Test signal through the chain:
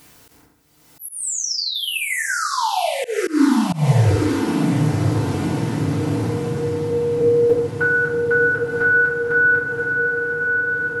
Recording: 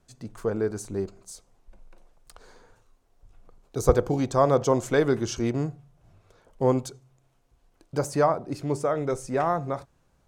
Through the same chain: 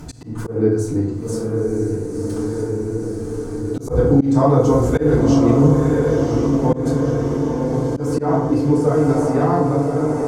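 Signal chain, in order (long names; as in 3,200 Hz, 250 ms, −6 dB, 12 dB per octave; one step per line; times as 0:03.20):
in parallel at −3 dB: downward compressor, threshold −34 dBFS
on the sum: low-shelf EQ 450 Hz +9 dB
on a send: feedback delay with all-pass diffusion 1,021 ms, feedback 62%, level −4.5 dB
on the sum: upward compression, threshold −18 dBFS
feedback delay network reverb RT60 0.75 s, low-frequency decay 1.25×, high-frequency decay 0.55×, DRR −10 dB
volume swells 166 ms
level −10 dB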